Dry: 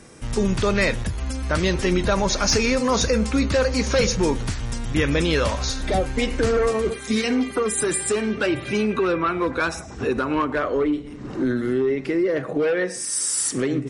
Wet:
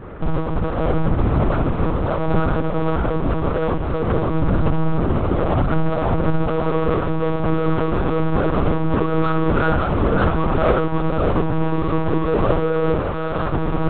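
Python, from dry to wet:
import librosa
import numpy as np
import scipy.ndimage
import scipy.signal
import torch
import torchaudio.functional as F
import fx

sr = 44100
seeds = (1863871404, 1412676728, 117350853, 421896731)

p1 = fx.halfwave_hold(x, sr)
p2 = scipy.signal.sosfilt(scipy.signal.cheby1(10, 1.0, 1500.0, 'lowpass', fs=sr, output='sos'), p1)
p3 = fx.fuzz(p2, sr, gain_db=32.0, gate_db=-41.0)
p4 = p2 + (p3 * 10.0 ** (-10.0 / 20.0))
p5 = fx.over_compress(p4, sr, threshold_db=-19.0, ratio=-1.0)
p6 = fx.hum_notches(p5, sr, base_hz=50, count=9)
p7 = p6 + fx.echo_multitap(p6, sr, ms=(65, 135, 558), db=(-7.0, -15.5, -4.5), dry=0)
y = fx.lpc_monotone(p7, sr, seeds[0], pitch_hz=160.0, order=10)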